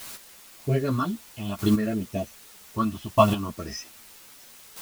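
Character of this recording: phasing stages 6, 0.56 Hz, lowest notch 420–1400 Hz; a quantiser's noise floor 8-bit, dither triangular; chopped level 0.63 Hz, depth 65%, duty 10%; a shimmering, thickened sound

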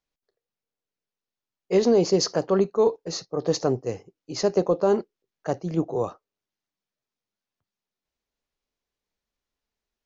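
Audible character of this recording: noise floor -91 dBFS; spectral tilt -5.5 dB/oct

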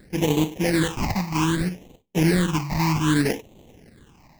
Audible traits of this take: aliases and images of a low sample rate 1300 Hz, jitter 20%; phasing stages 8, 0.63 Hz, lowest notch 430–1600 Hz

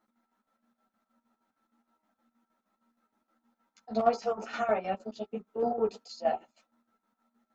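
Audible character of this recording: chopped level 6.4 Hz, depth 65%, duty 60%; a shimmering, thickened sound

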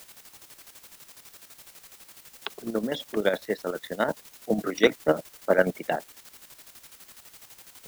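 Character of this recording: a quantiser's noise floor 8-bit, dither triangular; chopped level 12 Hz, depth 60%, duty 45%

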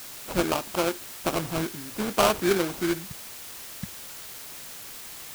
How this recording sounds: aliases and images of a low sample rate 1900 Hz, jitter 20%; random-step tremolo; a quantiser's noise floor 8-bit, dither triangular

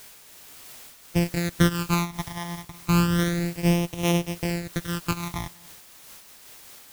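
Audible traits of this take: a buzz of ramps at a fixed pitch in blocks of 256 samples; phasing stages 12, 0.31 Hz, lowest notch 450–1500 Hz; a quantiser's noise floor 8-bit, dither triangular; noise-modulated level

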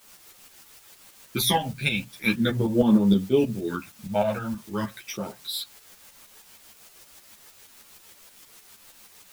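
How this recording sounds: phasing stages 12, 0.41 Hz, lowest notch 330–2100 Hz; a quantiser's noise floor 8-bit, dither triangular; tremolo saw up 6.4 Hz, depth 60%; a shimmering, thickened sound

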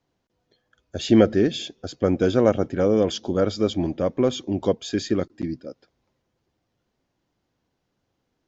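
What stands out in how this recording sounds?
noise floor -76 dBFS; spectral tilt -6.0 dB/oct

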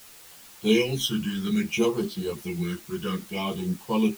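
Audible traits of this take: phasing stages 12, 0.6 Hz, lowest notch 660–2300 Hz; a quantiser's noise floor 8-bit, dither triangular; a shimmering, thickened sound

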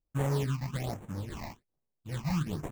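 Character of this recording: aliases and images of a low sample rate 1400 Hz, jitter 20%; phasing stages 8, 1.2 Hz, lowest notch 420–4800 Hz

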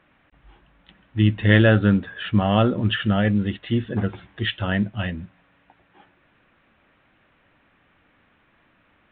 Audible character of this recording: µ-law

